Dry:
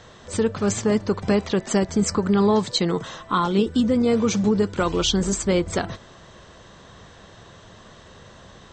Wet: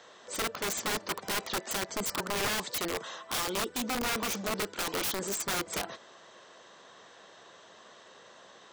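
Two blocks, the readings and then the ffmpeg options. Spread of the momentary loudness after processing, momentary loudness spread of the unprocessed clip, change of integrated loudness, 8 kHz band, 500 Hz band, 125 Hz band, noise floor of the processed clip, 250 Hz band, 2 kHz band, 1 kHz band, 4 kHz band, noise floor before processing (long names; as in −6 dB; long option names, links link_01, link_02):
5 LU, 6 LU, −10.5 dB, −4.0 dB, −14.5 dB, −19.0 dB, −55 dBFS, −19.0 dB, −1.0 dB, −7.5 dB, −5.5 dB, −47 dBFS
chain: -af "highpass=400,aeval=exprs='(mod(11.2*val(0)+1,2)-1)/11.2':channel_layout=same,volume=-5dB"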